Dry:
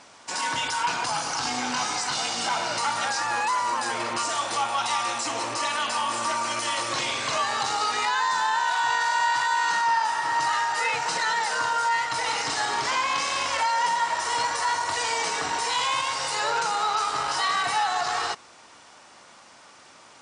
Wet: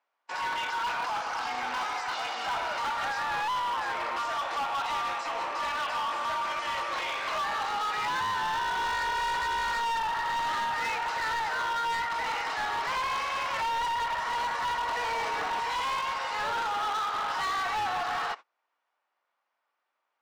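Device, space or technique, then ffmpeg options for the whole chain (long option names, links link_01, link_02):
walkie-talkie: -filter_complex "[0:a]asettb=1/sr,asplit=3[link_01][link_02][link_03];[link_01]atrim=end=14.774[link_04];[link_02]atrim=start=14.77:end=15.6,asetpts=PTS-STARTPTS,afade=type=in:duration=0.004:curve=qsin,afade=type=out:start_time=0.826:duration=0.004:curve=qsin,lowshelf=frequency=450:gain=9[link_05];[link_03]atrim=start=15.596[link_06];[link_04][link_05]acrossfade=duration=0.004:curve1=hsin:curve2=qsin[link_07];[link_07][link_06]acrossfade=duration=0.004:curve1=qsin:curve2=hsin,highpass=580,lowpass=2400,asoftclip=type=hard:threshold=-27.5dB,agate=range=-28dB:threshold=-40dB:ratio=16:detection=peak"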